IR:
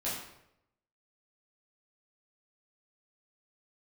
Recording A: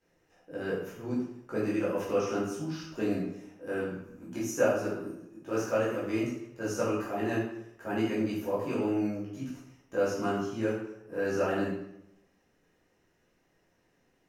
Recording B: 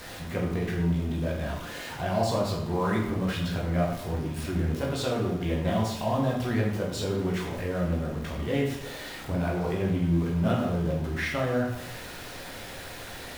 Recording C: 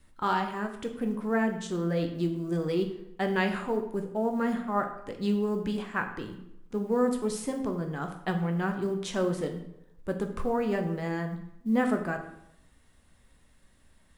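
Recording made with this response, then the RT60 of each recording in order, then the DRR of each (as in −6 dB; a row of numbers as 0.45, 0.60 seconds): A; 0.80, 0.80, 0.80 seconds; −9.0, −3.5, 4.5 decibels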